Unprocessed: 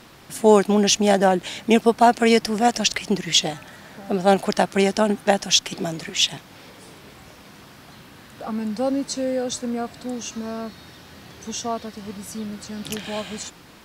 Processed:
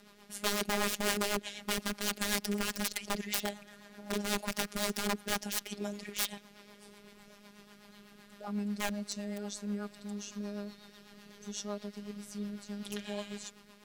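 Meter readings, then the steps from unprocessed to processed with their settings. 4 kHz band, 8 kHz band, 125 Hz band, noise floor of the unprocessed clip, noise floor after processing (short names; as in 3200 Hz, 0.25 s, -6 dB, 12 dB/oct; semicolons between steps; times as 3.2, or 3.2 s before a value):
-14.0 dB, -11.5 dB, -13.5 dB, -47 dBFS, -58 dBFS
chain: wrapped overs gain 15.5 dB; robotiser 205 Hz; rotary speaker horn 8 Hz; gain -6.5 dB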